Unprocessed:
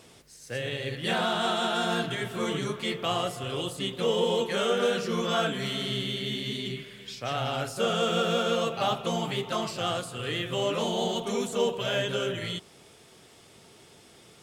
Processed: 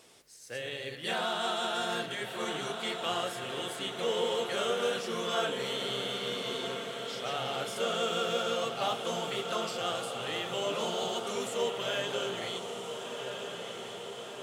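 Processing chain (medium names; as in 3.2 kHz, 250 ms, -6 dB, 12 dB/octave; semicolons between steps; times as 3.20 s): tone controls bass -10 dB, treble +2 dB; on a send: echo that smears into a reverb 1376 ms, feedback 65%, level -7 dB; on the sum: trim -4.5 dB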